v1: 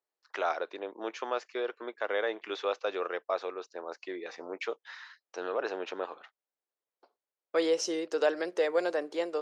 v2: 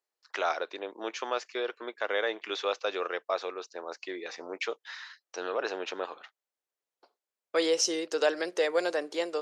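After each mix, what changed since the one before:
master: add high-shelf EQ 2,500 Hz +9 dB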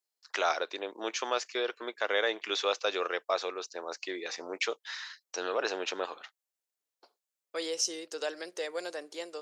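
second voice −9.5 dB
master: add high-shelf EQ 4,700 Hz +11.5 dB

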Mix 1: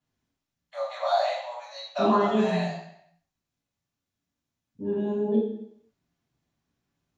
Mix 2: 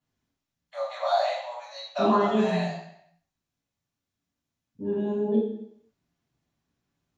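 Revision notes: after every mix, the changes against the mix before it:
nothing changed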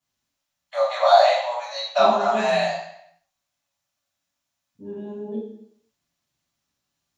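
first voice +10.0 dB
second voice −6.5 dB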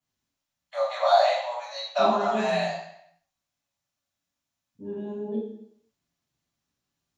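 first voice −5.0 dB

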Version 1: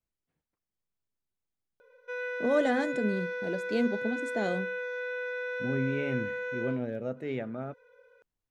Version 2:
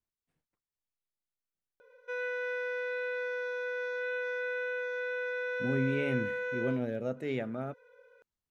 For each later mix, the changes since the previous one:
first voice: muted
second voice: remove low-pass filter 3,200 Hz 6 dB per octave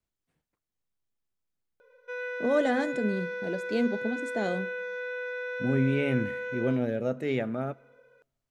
first voice: unmuted
second voice +4.5 dB
reverb: on, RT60 1.1 s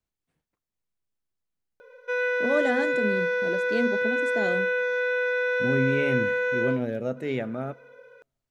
background +9.5 dB

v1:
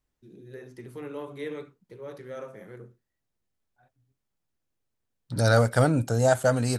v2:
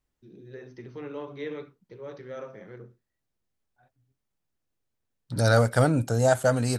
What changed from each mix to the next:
first voice: add linear-phase brick-wall low-pass 6,300 Hz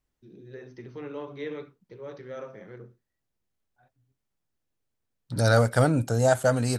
nothing changed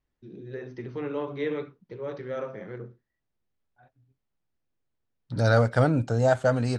first voice +6.0 dB
master: add high-frequency loss of the air 120 metres

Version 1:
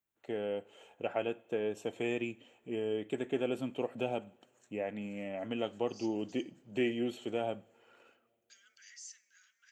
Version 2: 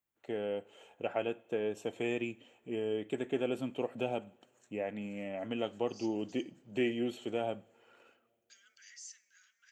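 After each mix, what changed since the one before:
nothing changed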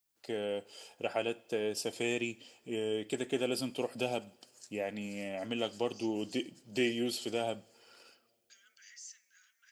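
first voice: remove moving average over 9 samples

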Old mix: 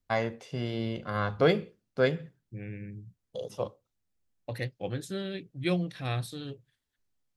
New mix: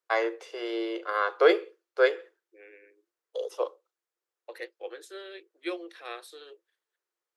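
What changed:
first voice +6.5 dB
master: add Chebyshev high-pass with heavy ripple 330 Hz, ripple 6 dB

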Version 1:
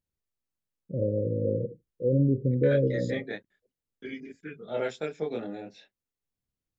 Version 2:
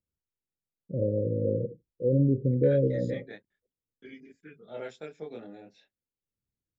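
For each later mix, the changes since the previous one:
second voice −8.5 dB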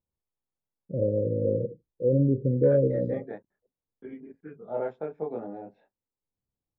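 second voice +5.5 dB
master: add low-pass with resonance 920 Hz, resonance Q 2.2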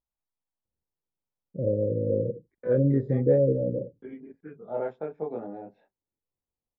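first voice: entry +0.65 s

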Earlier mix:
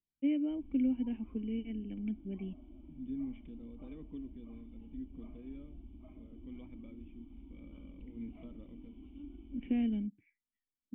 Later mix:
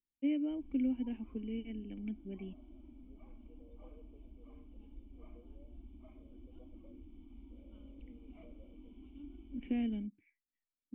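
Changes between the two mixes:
second voice: add flat-topped band-pass 570 Hz, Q 2.4
master: add parametric band 130 Hz −10 dB 1.1 octaves

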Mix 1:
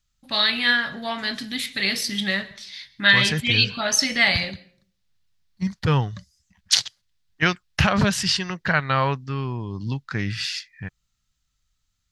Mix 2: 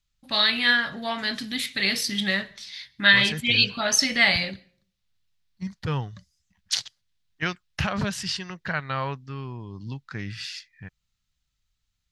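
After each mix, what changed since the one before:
first voice: send −6.5 dB
second voice −7.5 dB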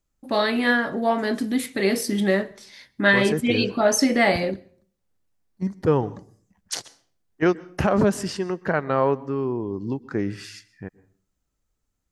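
second voice: send on
master: remove drawn EQ curve 140 Hz 0 dB, 360 Hz −17 dB, 3,800 Hz +11 dB, 8,600 Hz −3 dB

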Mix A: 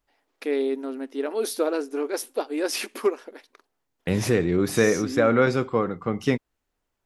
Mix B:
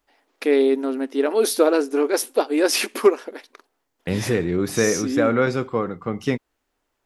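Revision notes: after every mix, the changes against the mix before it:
first voice +7.5 dB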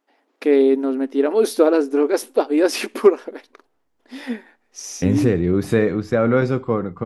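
second voice: entry +0.95 s
master: add spectral tilt −2 dB per octave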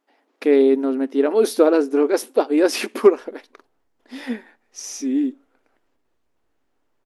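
second voice: entry +2.20 s

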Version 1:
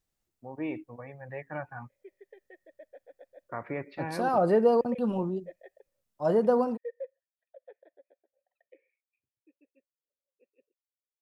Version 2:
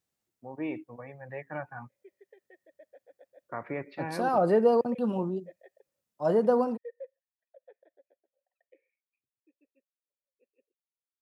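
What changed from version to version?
background −4.0 dB
master: add high-pass filter 110 Hz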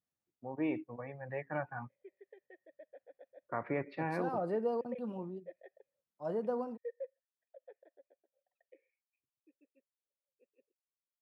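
second voice −11.5 dB
master: add high-shelf EQ 3,700 Hz −6 dB

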